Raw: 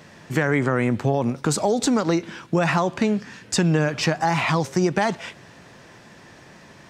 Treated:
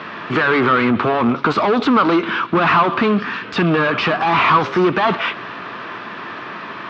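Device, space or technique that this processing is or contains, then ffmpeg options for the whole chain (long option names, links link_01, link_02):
overdrive pedal into a guitar cabinet: -filter_complex "[0:a]asplit=2[link_01][link_02];[link_02]highpass=frequency=720:poles=1,volume=29dB,asoftclip=type=tanh:threshold=-5dB[link_03];[link_01][link_03]amix=inputs=2:normalize=0,lowpass=frequency=2100:poles=1,volume=-6dB,highpass=100,equalizer=frequency=150:width_type=q:width=4:gain=-5,equalizer=frequency=540:width_type=q:width=4:gain=-8,equalizer=frequency=790:width_type=q:width=4:gain=-6,equalizer=frequency=1200:width_type=q:width=4:gain=8,equalizer=frequency=1900:width_type=q:width=4:gain=-5,lowpass=frequency=3700:width=0.5412,lowpass=frequency=3700:width=1.3066"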